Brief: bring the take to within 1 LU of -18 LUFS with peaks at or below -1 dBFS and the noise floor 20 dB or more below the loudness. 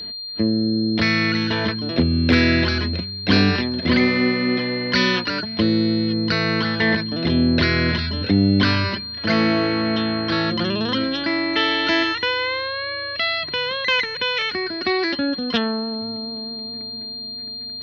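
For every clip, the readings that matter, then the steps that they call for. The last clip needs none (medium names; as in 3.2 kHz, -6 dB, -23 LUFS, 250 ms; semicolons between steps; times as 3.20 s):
steady tone 4.2 kHz; tone level -29 dBFS; loudness -20.0 LUFS; peak level -3.5 dBFS; loudness target -18.0 LUFS
-> band-stop 4.2 kHz, Q 30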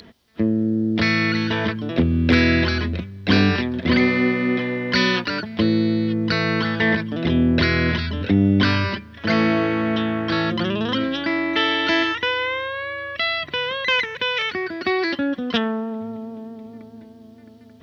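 steady tone not found; loudness -20.5 LUFS; peak level -4.0 dBFS; loudness target -18.0 LUFS
-> trim +2.5 dB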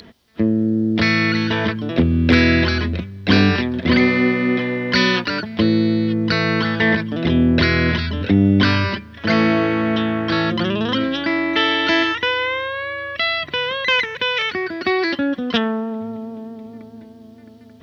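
loudness -18.0 LUFS; peak level -1.5 dBFS; noise floor -42 dBFS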